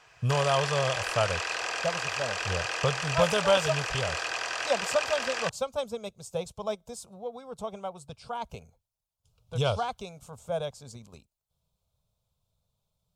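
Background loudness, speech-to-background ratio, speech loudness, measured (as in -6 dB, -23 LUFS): -31.0 LUFS, 0.0 dB, -31.0 LUFS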